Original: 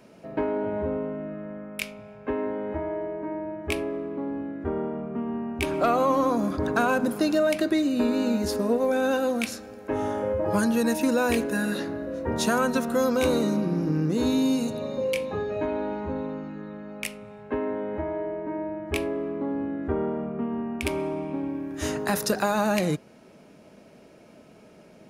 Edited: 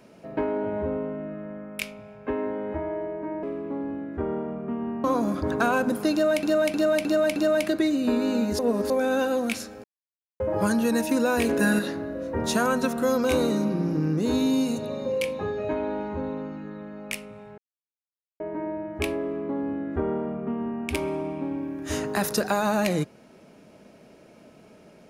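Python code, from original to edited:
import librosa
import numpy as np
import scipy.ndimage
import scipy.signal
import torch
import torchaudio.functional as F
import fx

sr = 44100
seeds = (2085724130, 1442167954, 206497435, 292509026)

y = fx.edit(x, sr, fx.cut(start_s=3.43, length_s=0.47),
    fx.cut(start_s=5.51, length_s=0.69),
    fx.repeat(start_s=7.28, length_s=0.31, count=5),
    fx.reverse_span(start_s=8.51, length_s=0.31),
    fx.silence(start_s=9.76, length_s=0.56),
    fx.clip_gain(start_s=11.41, length_s=0.3, db=5.0),
    fx.silence(start_s=17.5, length_s=0.82), tone=tone)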